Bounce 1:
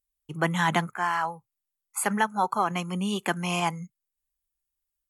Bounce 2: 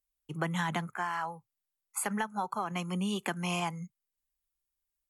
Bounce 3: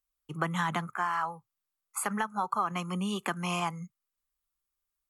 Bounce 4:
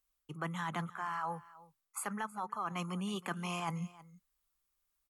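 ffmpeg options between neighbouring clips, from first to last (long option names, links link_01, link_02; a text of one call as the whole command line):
ffmpeg -i in.wav -filter_complex "[0:a]acrossover=split=140[link_01][link_02];[link_02]acompressor=threshold=-27dB:ratio=6[link_03];[link_01][link_03]amix=inputs=2:normalize=0,volume=-2.5dB" out.wav
ffmpeg -i in.wav -af "equalizer=frequency=1200:width_type=o:width=0.42:gain=9" out.wav
ffmpeg -i in.wav -af "areverse,acompressor=threshold=-39dB:ratio=6,areverse,aecho=1:1:319:0.106,volume=3.5dB" out.wav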